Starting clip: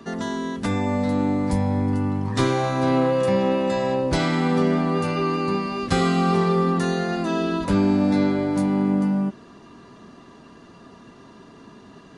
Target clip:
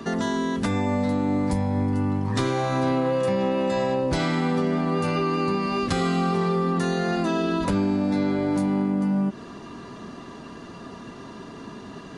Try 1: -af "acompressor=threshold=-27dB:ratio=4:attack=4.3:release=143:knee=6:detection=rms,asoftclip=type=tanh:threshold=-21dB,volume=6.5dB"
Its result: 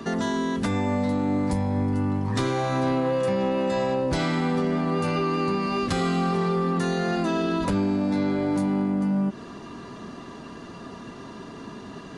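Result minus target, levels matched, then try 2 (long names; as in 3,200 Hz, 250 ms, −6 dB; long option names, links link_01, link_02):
soft clipping: distortion +19 dB
-af "acompressor=threshold=-27dB:ratio=4:attack=4.3:release=143:knee=6:detection=rms,asoftclip=type=tanh:threshold=-10.5dB,volume=6.5dB"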